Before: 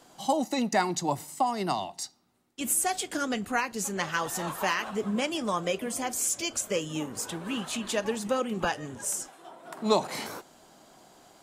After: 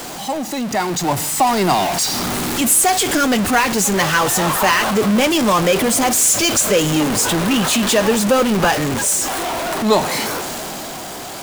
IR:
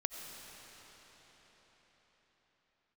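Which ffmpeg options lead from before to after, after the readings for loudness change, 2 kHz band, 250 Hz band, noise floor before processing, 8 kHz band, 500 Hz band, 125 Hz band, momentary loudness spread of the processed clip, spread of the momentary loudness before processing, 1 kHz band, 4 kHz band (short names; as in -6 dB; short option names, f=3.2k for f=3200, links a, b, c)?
+14.0 dB, +14.0 dB, +14.5 dB, -58 dBFS, +15.0 dB, +13.0 dB, +16.0 dB, 10 LU, 9 LU, +12.5 dB, +15.5 dB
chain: -af "aeval=exprs='val(0)+0.5*0.0596*sgn(val(0))':c=same,dynaudnorm=f=130:g=17:m=11.5dB"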